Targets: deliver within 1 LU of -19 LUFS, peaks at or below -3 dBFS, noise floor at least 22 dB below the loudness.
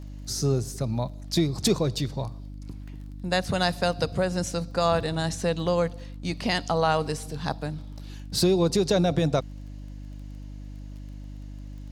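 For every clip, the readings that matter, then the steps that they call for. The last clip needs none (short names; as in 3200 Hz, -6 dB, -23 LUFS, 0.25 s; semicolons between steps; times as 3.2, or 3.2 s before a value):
ticks 21/s; hum 50 Hz; harmonics up to 300 Hz; hum level -36 dBFS; loudness -26.5 LUFS; peak -9.0 dBFS; loudness target -19.0 LUFS
-> de-click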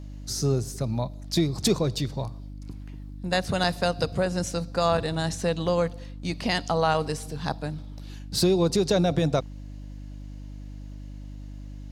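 ticks 0.084/s; hum 50 Hz; harmonics up to 300 Hz; hum level -37 dBFS
-> de-hum 50 Hz, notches 6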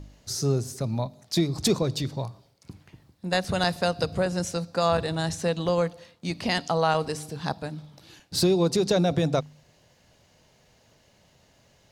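hum none; loudness -26.5 LUFS; peak -9.5 dBFS; loudness target -19.0 LUFS
-> gain +7.5 dB; limiter -3 dBFS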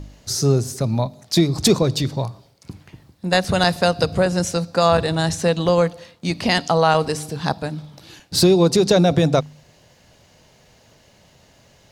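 loudness -19.0 LUFS; peak -3.0 dBFS; noise floor -54 dBFS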